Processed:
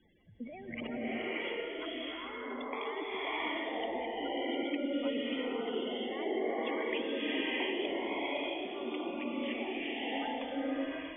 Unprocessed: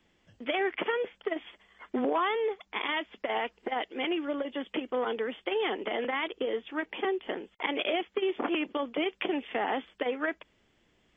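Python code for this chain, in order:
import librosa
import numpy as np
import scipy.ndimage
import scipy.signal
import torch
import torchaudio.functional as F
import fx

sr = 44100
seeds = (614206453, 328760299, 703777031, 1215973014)

y = fx.spec_gate(x, sr, threshold_db=-10, keep='strong')
y = fx.over_compress(y, sr, threshold_db=-40.0, ratio=-1.0)
y = fx.rev_bloom(y, sr, seeds[0], attack_ms=660, drr_db=-9.0)
y = y * librosa.db_to_amplitude(-5.0)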